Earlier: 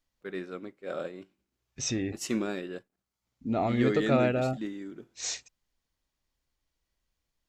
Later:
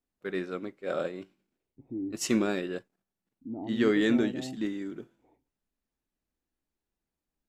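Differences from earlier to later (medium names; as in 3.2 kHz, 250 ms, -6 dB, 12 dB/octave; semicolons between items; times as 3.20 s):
first voice +4.0 dB; second voice: add cascade formant filter u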